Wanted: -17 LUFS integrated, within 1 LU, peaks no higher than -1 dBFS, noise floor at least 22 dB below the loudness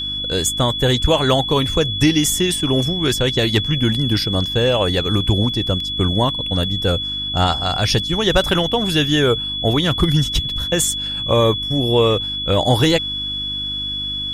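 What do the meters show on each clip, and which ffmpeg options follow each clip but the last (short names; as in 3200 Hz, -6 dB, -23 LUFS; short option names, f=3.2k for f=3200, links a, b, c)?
hum 50 Hz; harmonics up to 300 Hz; hum level -32 dBFS; steady tone 3400 Hz; tone level -22 dBFS; loudness -17.5 LUFS; peak -3.5 dBFS; loudness target -17.0 LUFS
-> -af "bandreject=f=50:t=h:w=4,bandreject=f=100:t=h:w=4,bandreject=f=150:t=h:w=4,bandreject=f=200:t=h:w=4,bandreject=f=250:t=h:w=4,bandreject=f=300:t=h:w=4"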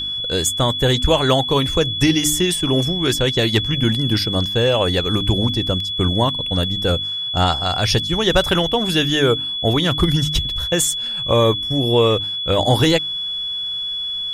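hum none; steady tone 3400 Hz; tone level -22 dBFS
-> -af "bandreject=f=3.4k:w=30"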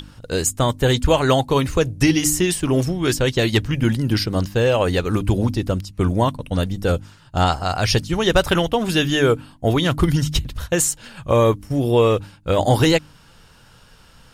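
steady tone none; loudness -19.5 LUFS; peak -4.0 dBFS; loudness target -17.0 LUFS
-> -af "volume=2.5dB"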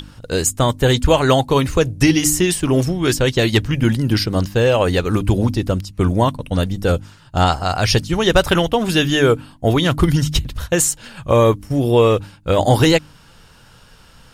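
loudness -17.0 LUFS; peak -1.5 dBFS; noise floor -47 dBFS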